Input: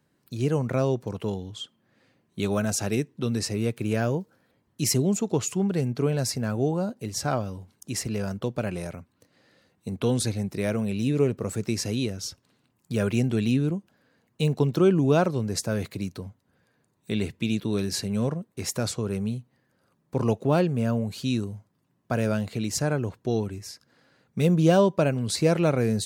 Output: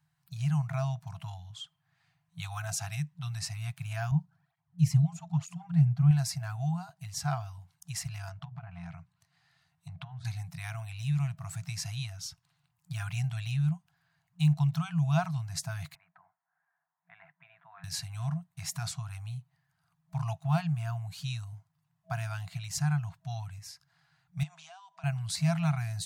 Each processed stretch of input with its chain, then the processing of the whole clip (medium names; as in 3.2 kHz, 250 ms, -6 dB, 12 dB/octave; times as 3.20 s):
4.11–6.11 s: high-pass 95 Hz + tilt EQ -3 dB/octave + cancelling through-zero flanger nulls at 1.1 Hz, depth 5.2 ms
8.29–10.25 s: low-pass that closes with the level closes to 1.4 kHz, closed at -25 dBFS + hum notches 60/120/180/240/300/360 Hz + compression, threshold -29 dBFS
15.95–17.84 s: Chebyshev band-pass 300–1800 Hz, order 3 + distance through air 180 m
24.43–25.04 s: elliptic band-pass 700–7900 Hz + compression 8:1, threshold -41 dBFS
whole clip: FFT band-reject 180–650 Hz; peaking EQ 150 Hz +7.5 dB 0.27 oct; trim -6 dB